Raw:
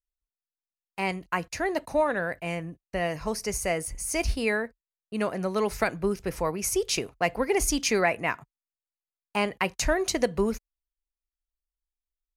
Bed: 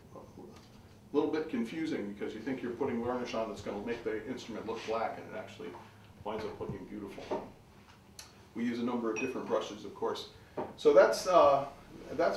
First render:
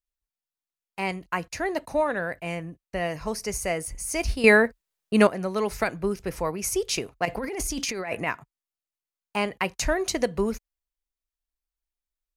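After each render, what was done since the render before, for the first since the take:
0:04.44–0:05.27: clip gain +10.5 dB
0:07.25–0:08.27: compressor whose output falls as the input rises −30 dBFS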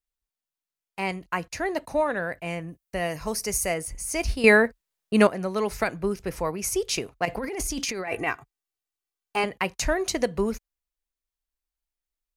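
0:02.68–0:03.74: high-shelf EQ 7,800 Hz +11 dB
0:08.07–0:09.44: comb filter 2.6 ms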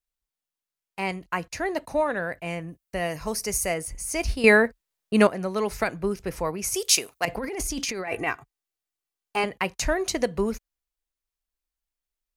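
0:06.74–0:07.25: RIAA equalisation recording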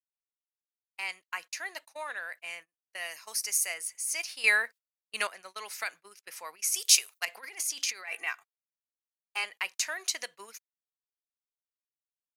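Bessel high-pass filter 2,200 Hz, order 2
noise gate −46 dBFS, range −26 dB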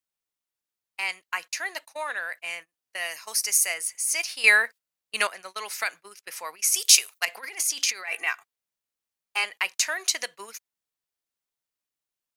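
level +6.5 dB
brickwall limiter −2 dBFS, peak gain reduction 2.5 dB

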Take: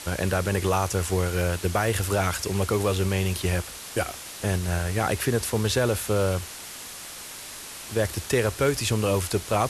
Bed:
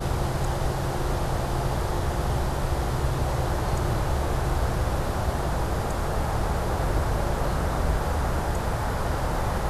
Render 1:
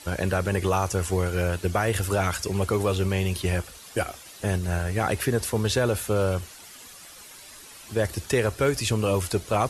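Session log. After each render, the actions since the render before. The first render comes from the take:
broadband denoise 10 dB, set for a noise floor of −40 dBFS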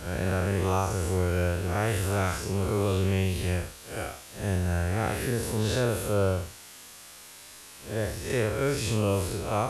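spectrum smeared in time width 141 ms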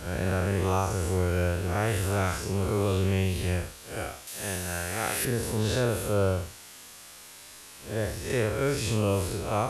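0:04.27–0:05.25: spectral tilt +3 dB per octave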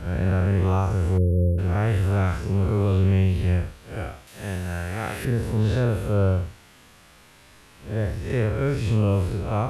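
0:01.18–0:01.58: time-frequency box erased 590–9,500 Hz
bass and treble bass +8 dB, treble −12 dB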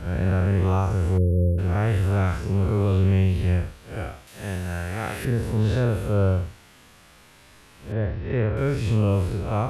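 0:07.92–0:08.57: Bessel low-pass filter 2,700 Hz, order 8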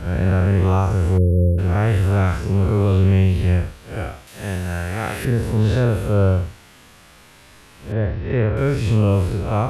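level +4.5 dB

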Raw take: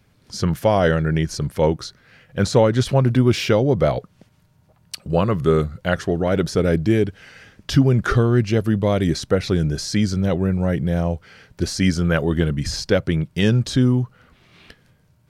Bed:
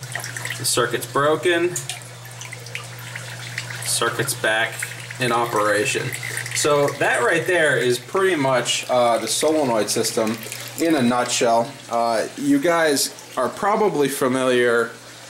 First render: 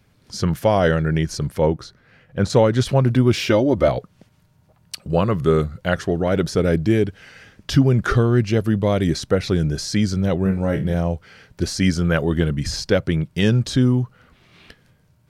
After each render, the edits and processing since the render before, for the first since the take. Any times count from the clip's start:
0:01.59–0:02.50: high-shelf EQ 2,400 Hz −8.5 dB
0:03.48–0:03.88: comb filter 3.3 ms
0:10.43–0:10.94: flutter between parallel walls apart 4.4 metres, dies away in 0.24 s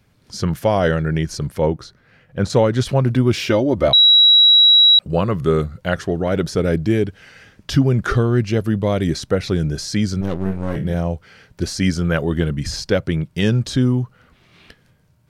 0:03.93–0:04.99: beep over 3,880 Hz −7 dBFS
0:10.21–0:10.76: gain on one half-wave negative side −12 dB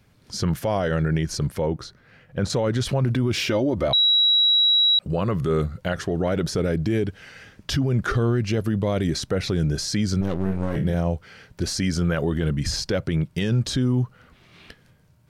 brickwall limiter −14.5 dBFS, peak gain reduction 10 dB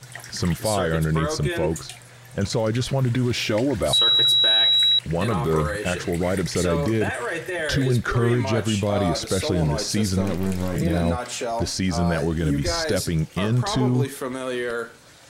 mix in bed −9.5 dB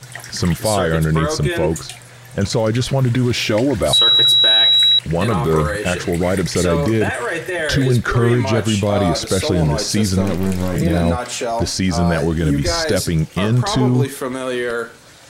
level +5.5 dB

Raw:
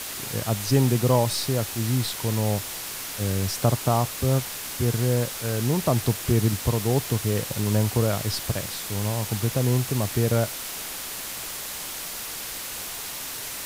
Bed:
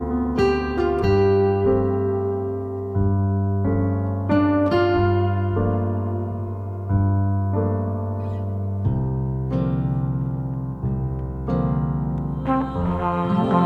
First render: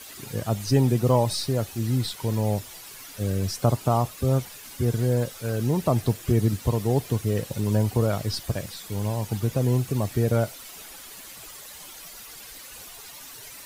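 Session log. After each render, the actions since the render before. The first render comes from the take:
broadband denoise 12 dB, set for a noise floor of −34 dBFS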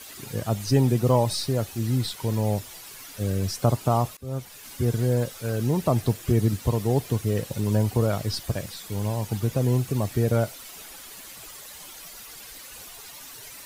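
0:04.17–0:04.69: fade in, from −23 dB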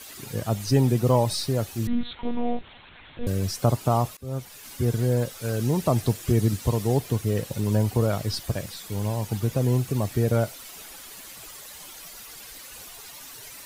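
0:01.87–0:03.27: one-pitch LPC vocoder at 8 kHz 240 Hz
0:05.41–0:06.97: parametric band 7,400 Hz +3 dB 2.1 octaves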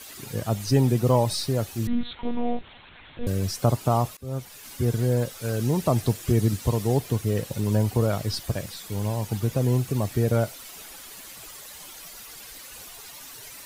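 no processing that can be heard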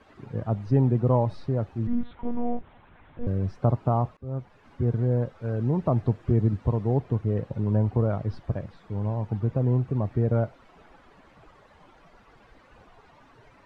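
low-pass filter 1,100 Hz 12 dB per octave
parametric band 460 Hz −2.5 dB 1.8 octaves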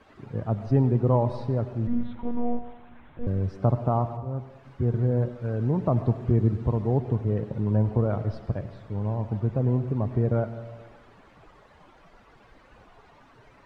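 dense smooth reverb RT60 1.2 s, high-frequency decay 0.75×, pre-delay 75 ms, DRR 11 dB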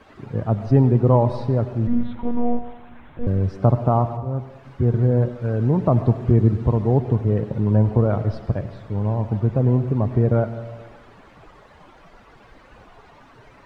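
level +6 dB

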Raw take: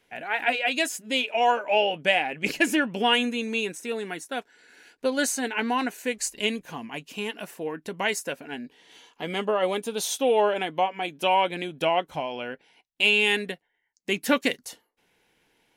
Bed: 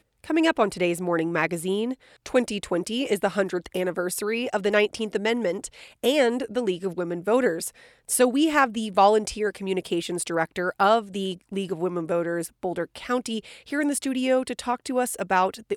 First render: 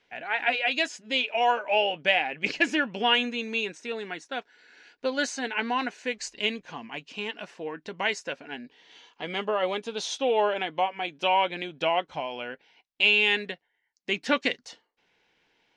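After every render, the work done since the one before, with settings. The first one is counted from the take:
low-pass filter 5,700 Hz 24 dB per octave
low-shelf EQ 490 Hz −6 dB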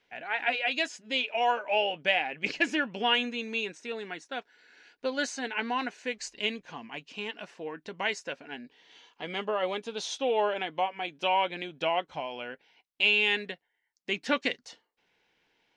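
level −3 dB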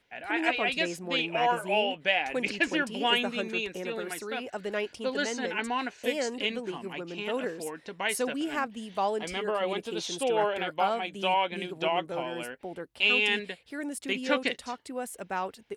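mix in bed −11 dB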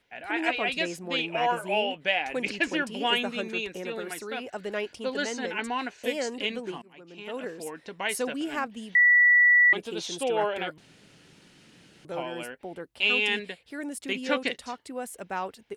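0:06.82–0:07.74: fade in, from −22.5 dB
0:08.95–0:09.73: beep over 1,950 Hz −15 dBFS
0:10.78–0:12.05: fill with room tone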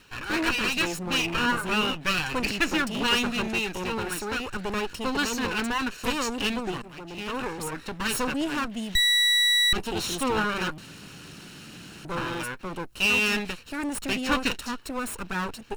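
lower of the sound and its delayed copy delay 0.72 ms
power curve on the samples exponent 0.7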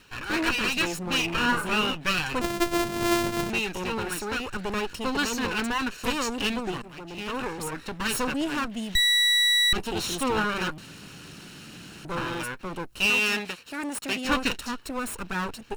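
0:01.36–0:01.81: double-tracking delay 36 ms −8.5 dB
0:02.41–0:03.50: samples sorted by size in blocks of 128 samples
0:13.10–0:14.25: high-pass filter 270 Hz 6 dB per octave

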